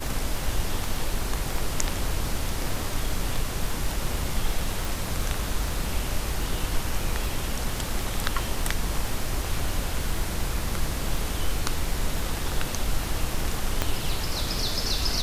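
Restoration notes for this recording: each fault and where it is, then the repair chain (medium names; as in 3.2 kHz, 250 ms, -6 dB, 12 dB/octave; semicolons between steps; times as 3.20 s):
crackle 32 per s -30 dBFS
4.85 s: pop
13.82 s: pop -8 dBFS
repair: de-click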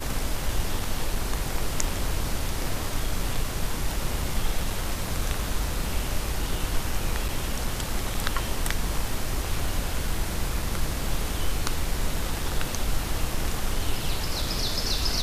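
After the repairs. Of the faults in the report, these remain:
13.82 s: pop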